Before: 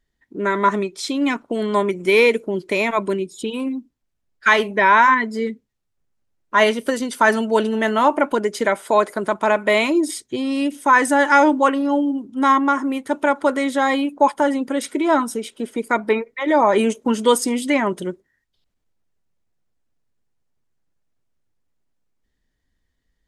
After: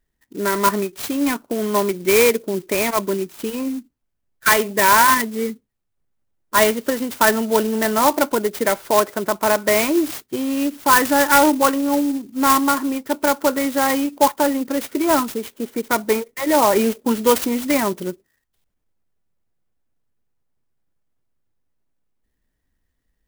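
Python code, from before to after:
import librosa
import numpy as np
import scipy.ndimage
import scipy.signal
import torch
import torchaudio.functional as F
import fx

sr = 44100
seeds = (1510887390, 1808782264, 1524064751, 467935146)

y = fx.clock_jitter(x, sr, seeds[0], jitter_ms=0.062)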